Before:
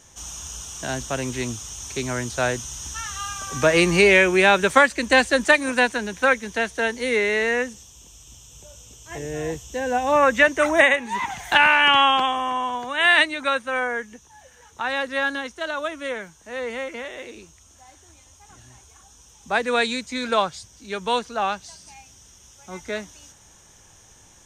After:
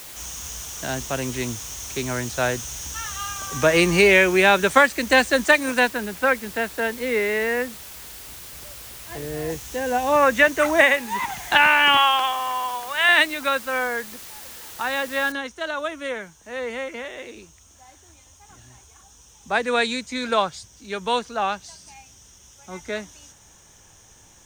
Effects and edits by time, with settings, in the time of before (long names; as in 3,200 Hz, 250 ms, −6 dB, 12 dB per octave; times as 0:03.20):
0:05.88–0:09.50: high-frequency loss of the air 240 metres
0:11.97–0:13.09: high-pass filter 620 Hz
0:15.32: noise floor change −40 dB −68 dB